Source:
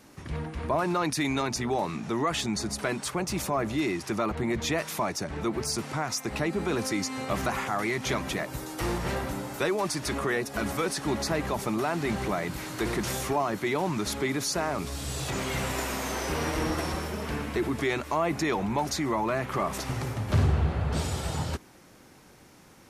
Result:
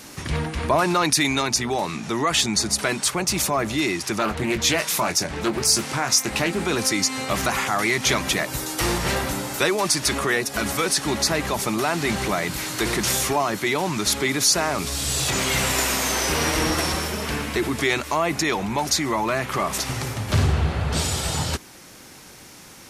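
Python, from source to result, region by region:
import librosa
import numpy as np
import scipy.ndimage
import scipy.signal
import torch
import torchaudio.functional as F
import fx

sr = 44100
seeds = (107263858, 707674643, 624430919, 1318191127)

y = fx.chain(x, sr, fx.high_shelf(hz=10000.0, db=4.5),
    fx.doubler(ms=23.0, db=-9),
    fx.doppler_dist(depth_ms=0.28), at=(4.19, 6.64))
y = fx.high_shelf(y, sr, hz=9700.0, db=-3.5)
y = fx.rider(y, sr, range_db=10, speed_s=2.0)
y = fx.high_shelf(y, sr, hz=2200.0, db=11.0)
y = F.gain(torch.from_numpy(y), 3.5).numpy()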